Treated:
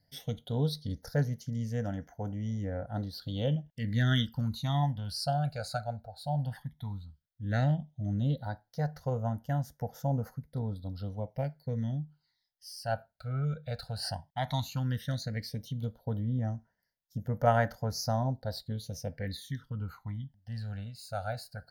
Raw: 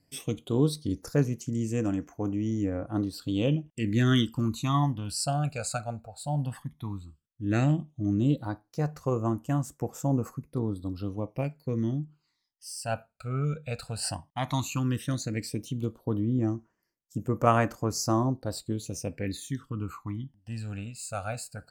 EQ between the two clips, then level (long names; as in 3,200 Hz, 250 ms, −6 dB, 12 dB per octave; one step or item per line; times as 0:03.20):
phaser with its sweep stopped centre 1,700 Hz, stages 8
0.0 dB